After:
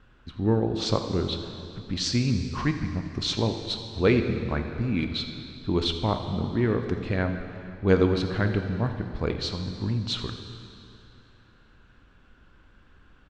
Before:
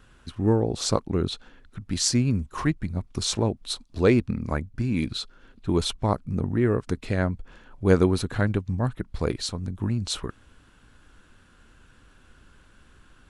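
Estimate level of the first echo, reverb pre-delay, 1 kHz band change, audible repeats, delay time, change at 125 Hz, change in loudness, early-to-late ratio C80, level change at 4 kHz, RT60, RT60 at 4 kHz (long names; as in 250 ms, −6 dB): −16.5 dB, 6 ms, −1.0 dB, 1, 84 ms, −1.0 dB, −1.0 dB, 7.5 dB, +1.0 dB, 2.7 s, 2.5 s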